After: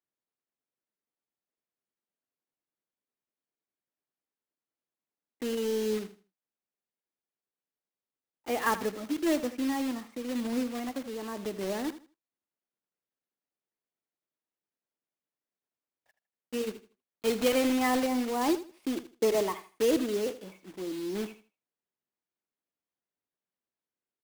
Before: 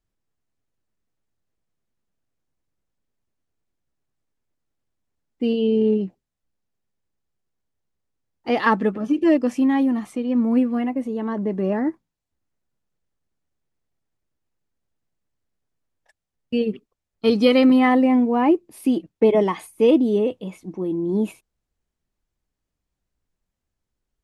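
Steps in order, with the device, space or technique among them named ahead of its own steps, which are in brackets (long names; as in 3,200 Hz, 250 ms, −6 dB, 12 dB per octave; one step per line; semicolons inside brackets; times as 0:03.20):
early digital voice recorder (band-pass filter 280–3,600 Hz; one scale factor per block 3 bits)
repeating echo 79 ms, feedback 24%, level −14 dB
level −9 dB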